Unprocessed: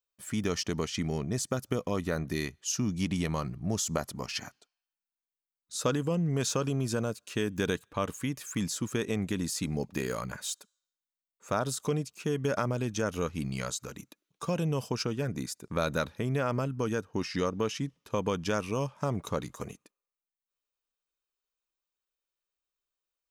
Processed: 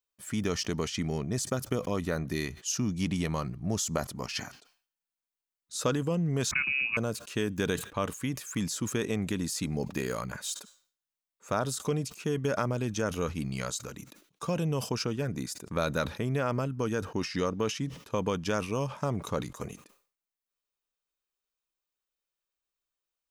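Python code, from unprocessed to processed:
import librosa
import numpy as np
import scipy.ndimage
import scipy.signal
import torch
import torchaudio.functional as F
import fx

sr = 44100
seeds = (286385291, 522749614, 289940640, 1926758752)

y = fx.freq_invert(x, sr, carrier_hz=2700, at=(6.51, 6.97))
y = fx.sustainer(y, sr, db_per_s=130.0)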